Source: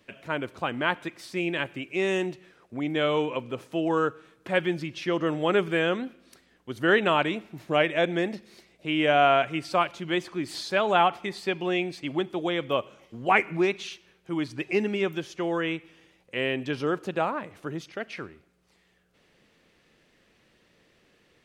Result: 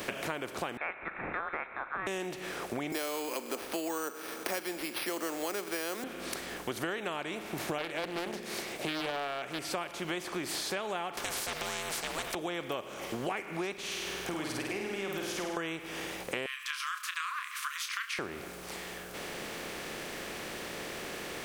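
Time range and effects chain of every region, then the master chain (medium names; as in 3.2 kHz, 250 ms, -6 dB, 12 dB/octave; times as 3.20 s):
0.77–2.07 s: elliptic high-pass 1.3 kHz + frequency inversion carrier 3.8 kHz
2.92–6.04 s: steep high-pass 220 Hz 48 dB/octave + careless resampling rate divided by 6×, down none, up hold
7.78–9.59 s: hum notches 60/120/180/240/300/360/420/480 Hz + loudspeaker Doppler distortion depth 0.44 ms
11.17–12.35 s: ring modulator 320 Hz + spectrum-flattening compressor 4:1
13.73–15.57 s: compression 2.5:1, threshold -45 dBFS + flutter echo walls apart 8.7 m, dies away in 0.81 s
16.46–18.19 s: brick-wall FIR high-pass 1 kHz + doubling 29 ms -11 dB
whole clip: spectral levelling over time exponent 0.6; treble shelf 5.6 kHz +9.5 dB; compression 10:1, threshold -34 dBFS; trim +1.5 dB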